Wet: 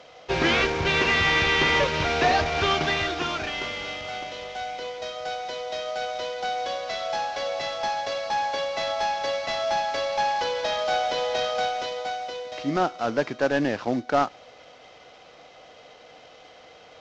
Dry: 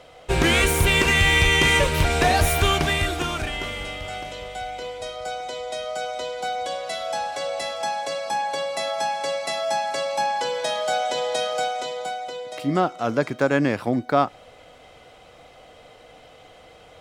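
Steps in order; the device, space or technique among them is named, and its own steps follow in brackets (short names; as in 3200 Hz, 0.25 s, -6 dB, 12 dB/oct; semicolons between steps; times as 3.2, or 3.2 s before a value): early wireless headset (HPF 260 Hz 6 dB/oct; CVSD 32 kbps)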